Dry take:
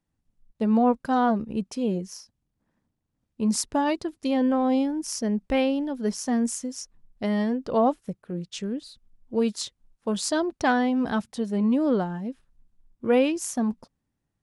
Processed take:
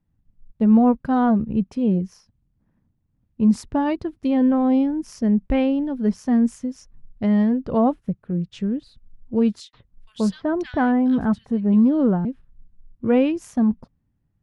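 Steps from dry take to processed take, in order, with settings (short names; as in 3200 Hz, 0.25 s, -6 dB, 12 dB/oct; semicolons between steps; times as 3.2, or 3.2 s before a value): tone controls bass +12 dB, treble -14 dB; 9.6–12.25 bands offset in time highs, lows 0.13 s, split 2200 Hz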